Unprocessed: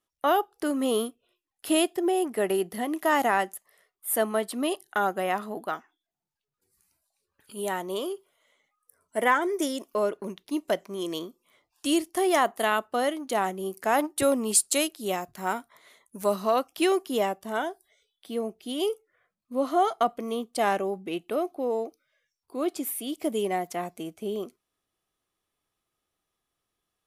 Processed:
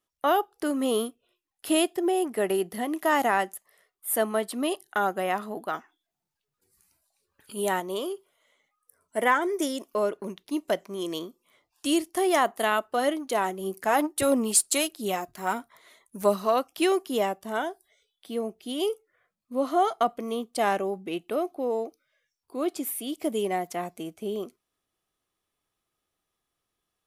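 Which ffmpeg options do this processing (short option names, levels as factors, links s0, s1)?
-filter_complex "[0:a]asplit=3[s0][s1][s2];[s0]afade=t=out:st=12.76:d=0.02[s3];[s1]aphaser=in_gain=1:out_gain=1:delay=3.2:decay=0.34:speed=1.6:type=sinusoidal,afade=t=in:st=12.76:d=0.02,afade=t=out:st=16.49:d=0.02[s4];[s2]afade=t=in:st=16.49:d=0.02[s5];[s3][s4][s5]amix=inputs=3:normalize=0,asplit=3[s6][s7][s8];[s6]atrim=end=5.742[s9];[s7]atrim=start=5.738:end=7.802,asetpts=PTS-STARTPTS,volume=1.5[s10];[s8]atrim=start=7.798[s11];[s9][s10]acrossfade=d=0.004:c1=hsin:c2=hsin[s12];[s12][s11]acrossfade=d=0.004:c1=hsin:c2=hsin"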